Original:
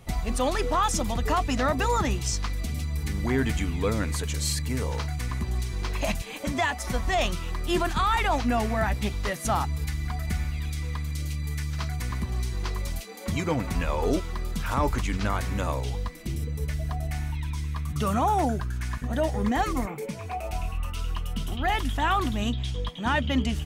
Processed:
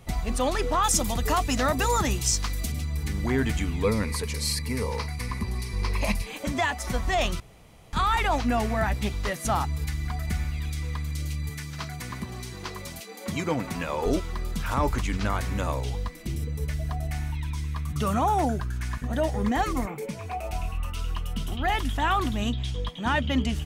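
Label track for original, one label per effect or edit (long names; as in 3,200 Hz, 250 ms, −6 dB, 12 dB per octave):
0.840000	2.720000	high-shelf EQ 5,800 Hz +11 dB
3.840000	6.270000	EQ curve with evenly spaced ripples crests per octave 0.89, crest to trough 8 dB
7.400000	7.930000	fill with room tone
11.490000	14.060000	high-pass filter 130 Hz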